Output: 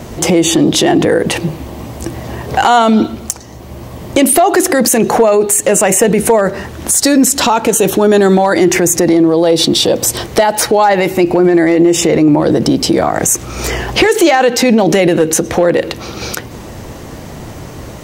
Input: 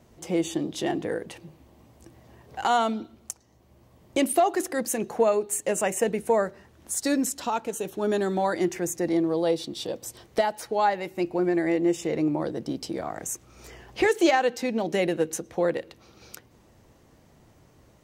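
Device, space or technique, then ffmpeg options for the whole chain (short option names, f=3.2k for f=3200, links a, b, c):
loud club master: -af "acompressor=threshold=-27dB:ratio=2.5,asoftclip=type=hard:threshold=-20dB,alimiter=level_in=29.5dB:limit=-1dB:release=50:level=0:latency=1,volume=-1dB"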